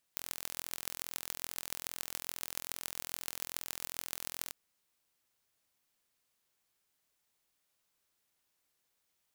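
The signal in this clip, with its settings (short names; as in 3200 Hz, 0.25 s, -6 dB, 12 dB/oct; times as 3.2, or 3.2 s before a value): pulse train 42.4/s, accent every 6, -8 dBFS 4.34 s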